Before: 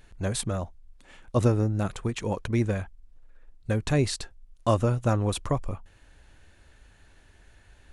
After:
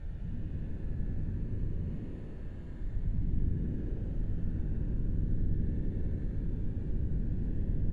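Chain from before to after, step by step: Paulstretch 26×, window 0.05 s, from 5.90 s; in parallel at -8.5 dB: sample-and-hold 30×; on the sum: compression 2:1, threshold -51 dBFS, peak gain reduction 5 dB; tilt EQ -4.5 dB/octave; frequency-shifting echo 89 ms, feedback 61%, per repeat +69 Hz, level -6.5 dB

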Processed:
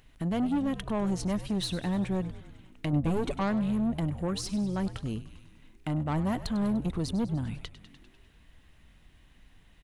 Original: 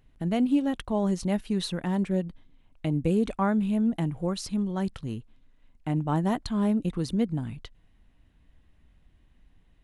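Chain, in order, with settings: saturation -25.5 dBFS, distortion -11 dB; 2.92–3.38 s: comb 7 ms, depth 69%; frequency-shifting echo 99 ms, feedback 62%, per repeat -73 Hz, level -14.5 dB; tape noise reduction on one side only encoder only; trim +1 dB

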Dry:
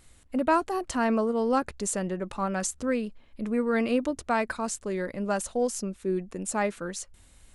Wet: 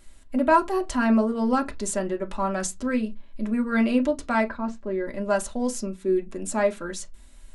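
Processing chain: 4.49–5.07 s: tape spacing loss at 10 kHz 32 dB; reverberation, pre-delay 3 ms, DRR 1.5 dB

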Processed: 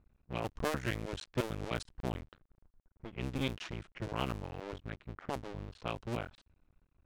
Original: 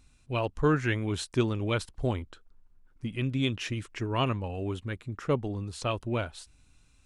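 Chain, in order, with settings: cycle switcher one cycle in 2, muted; level-controlled noise filter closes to 1.3 kHz, open at -26 dBFS; short-mantissa float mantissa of 6-bit; trim -5.5 dB

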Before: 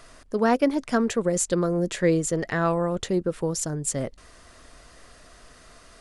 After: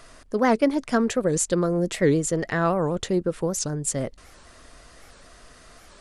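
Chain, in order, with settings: warped record 78 rpm, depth 250 cents; trim +1 dB

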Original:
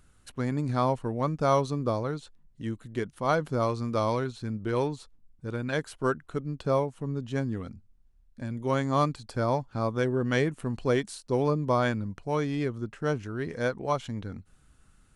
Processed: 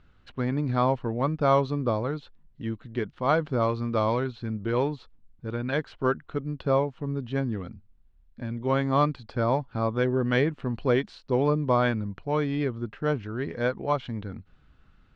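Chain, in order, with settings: low-pass 4 kHz 24 dB/octave; trim +2 dB

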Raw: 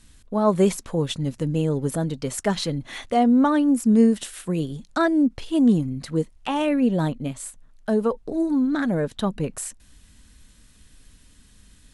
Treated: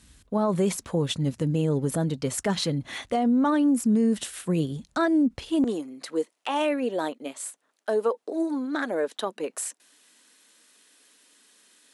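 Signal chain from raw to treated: high-pass 42 Hz 24 dB/octave, from 5.64 s 340 Hz; peak limiter -16 dBFS, peak gain reduction 8 dB

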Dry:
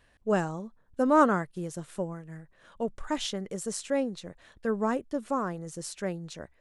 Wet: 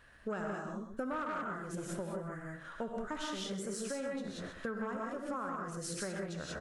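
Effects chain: delay 129 ms -14 dB; gated-style reverb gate 210 ms rising, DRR -1 dB; saturation -18 dBFS, distortion -12 dB; peaking EQ 1.4 kHz +9.5 dB 0.66 oct; compression 10:1, threshold -36 dBFS, peak gain reduction 20 dB

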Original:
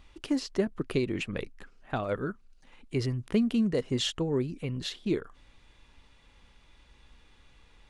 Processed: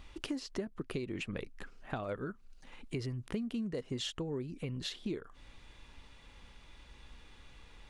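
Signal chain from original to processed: compression 4:1, threshold -40 dBFS, peak gain reduction 16 dB; trim +3 dB

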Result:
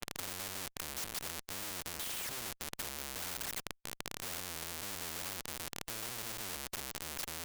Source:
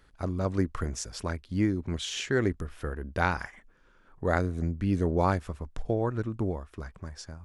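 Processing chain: spectral gate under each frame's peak -10 dB strong; level-controlled noise filter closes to 1.9 kHz, open at -23 dBFS; dynamic bell 6.2 kHz, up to -5 dB, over -56 dBFS, Q 0.74; in parallel at +2 dB: peak limiter -24 dBFS, peak gain reduction 9.5 dB; on the sum: compression 10:1, threshold -36 dBFS, peak gain reduction 18.5 dB; Schmitt trigger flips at -53 dBFS; spectrum-flattening compressor 4:1; trim +14 dB

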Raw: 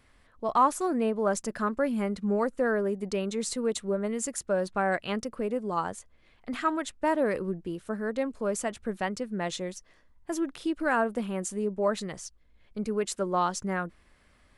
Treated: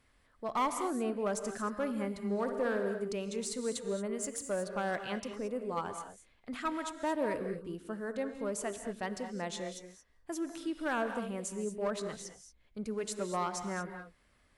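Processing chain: treble shelf 5.4 kHz +3 dB; one-sided clip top -22.5 dBFS; 2.22–2.85 s: flutter echo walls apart 10.3 m, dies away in 0.46 s; gated-style reverb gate 250 ms rising, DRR 7.5 dB; trim -7 dB

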